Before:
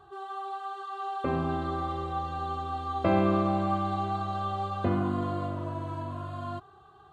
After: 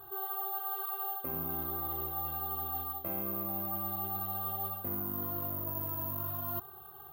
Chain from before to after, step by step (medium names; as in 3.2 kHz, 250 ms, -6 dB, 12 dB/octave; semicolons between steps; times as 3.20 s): reverse; compression 10:1, threshold -38 dBFS, peak gain reduction 18 dB; reverse; careless resampling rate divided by 3×, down none, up zero stuff